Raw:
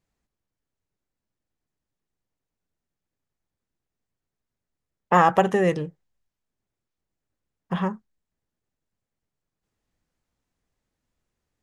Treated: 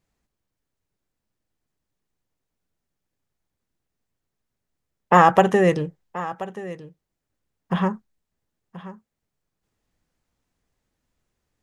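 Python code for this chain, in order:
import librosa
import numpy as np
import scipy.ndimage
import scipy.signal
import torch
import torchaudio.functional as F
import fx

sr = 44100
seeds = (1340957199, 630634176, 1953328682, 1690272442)

y = x + 10.0 ** (-16.0 / 20.0) * np.pad(x, (int(1030 * sr / 1000.0), 0))[:len(x)]
y = F.gain(torch.from_numpy(y), 3.5).numpy()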